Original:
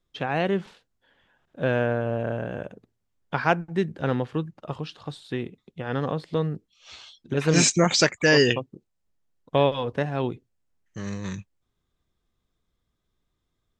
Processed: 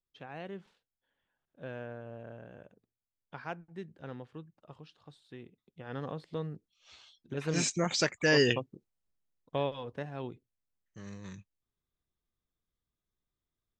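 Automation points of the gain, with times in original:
5.35 s -18.5 dB
5.99 s -11.5 dB
7.72 s -11.5 dB
8.57 s -5 dB
9.81 s -13 dB

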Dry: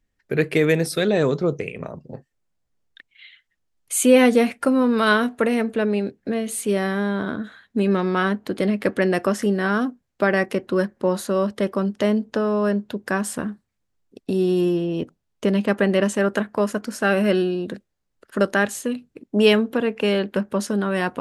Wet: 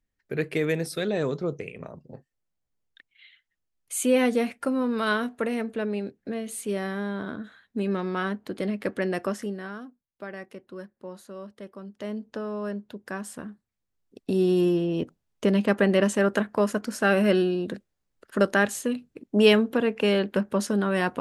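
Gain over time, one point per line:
9.3 s -7.5 dB
9.84 s -19 dB
11.81 s -19 dB
12.24 s -11 dB
13.47 s -11 dB
14.38 s -2 dB

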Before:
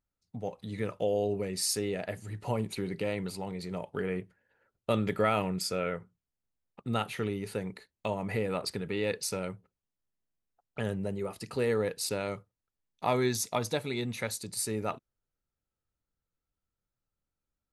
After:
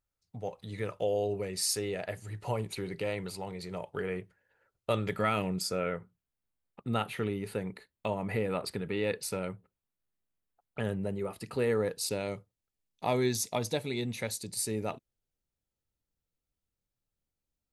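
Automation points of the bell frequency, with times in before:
bell -7 dB 0.8 oct
5.08 s 230 Hz
5.54 s 1600 Hz
5.94 s 5900 Hz
11.62 s 5900 Hz
12.13 s 1300 Hz

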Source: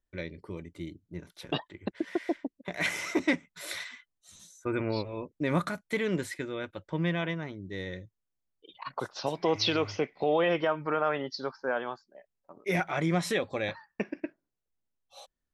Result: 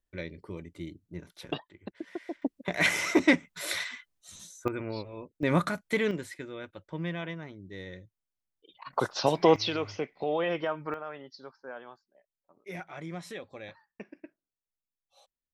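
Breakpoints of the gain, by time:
-0.5 dB
from 1.54 s -7.5 dB
from 2.42 s +5 dB
from 4.68 s -5 dB
from 5.43 s +2.5 dB
from 6.11 s -5 dB
from 8.93 s +6.5 dB
from 9.56 s -3.5 dB
from 10.94 s -12 dB

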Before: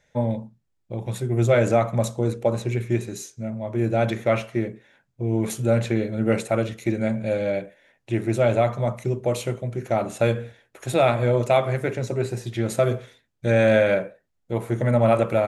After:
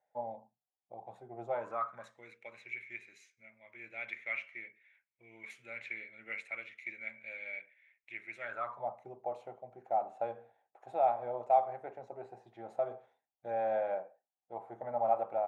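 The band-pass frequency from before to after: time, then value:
band-pass, Q 9
1.44 s 760 Hz
2.29 s 2200 Hz
8.35 s 2200 Hz
8.85 s 780 Hz

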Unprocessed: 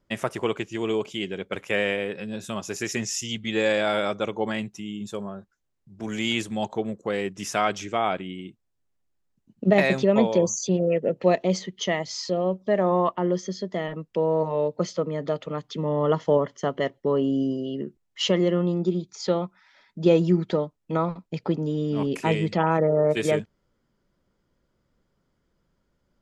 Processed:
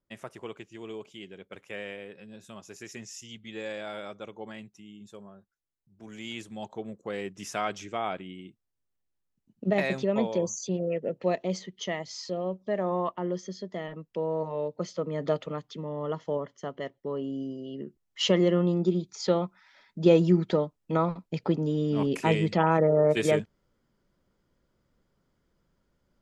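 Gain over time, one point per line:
6.12 s -14 dB
7.2 s -7 dB
14.9 s -7 dB
15.32 s 0 dB
15.89 s -10 dB
17.54 s -10 dB
18.29 s -1 dB

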